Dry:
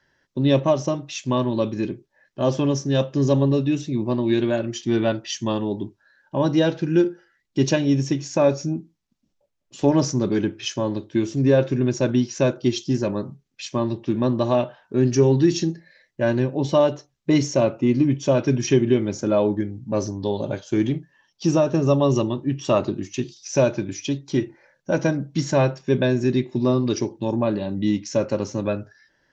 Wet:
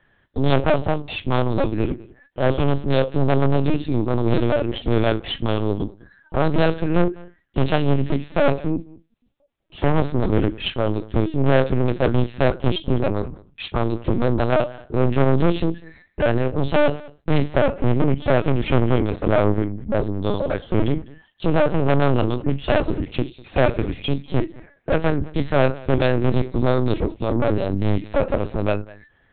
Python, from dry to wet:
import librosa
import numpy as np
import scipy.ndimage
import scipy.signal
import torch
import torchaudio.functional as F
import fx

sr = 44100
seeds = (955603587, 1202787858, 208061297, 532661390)

p1 = fx.cheby_harmonics(x, sr, harmonics=(4, 6), levels_db=(-8, -24), full_scale_db=-5.5)
p2 = 10.0 ** (-17.5 / 20.0) * np.tanh(p1 / 10.0 ** (-17.5 / 20.0))
p3 = p2 + fx.echo_single(p2, sr, ms=201, db=-22.0, dry=0)
p4 = fx.lpc_vocoder(p3, sr, seeds[0], excitation='pitch_kept', order=8)
y = p4 * librosa.db_to_amplitude(6.0)